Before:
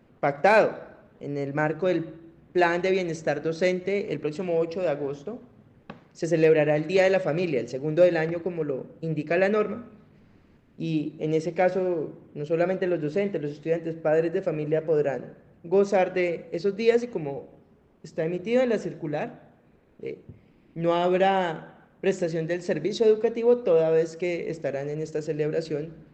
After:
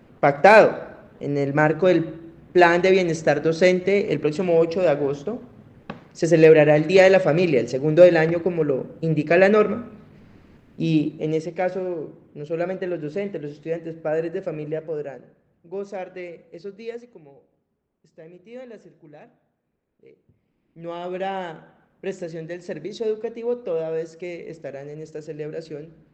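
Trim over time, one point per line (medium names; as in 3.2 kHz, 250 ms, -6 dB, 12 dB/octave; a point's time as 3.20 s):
11.03 s +7 dB
11.49 s -1.5 dB
14.63 s -1.5 dB
15.27 s -10 dB
16.69 s -10 dB
17.21 s -16.5 dB
20.11 s -16.5 dB
21.36 s -5 dB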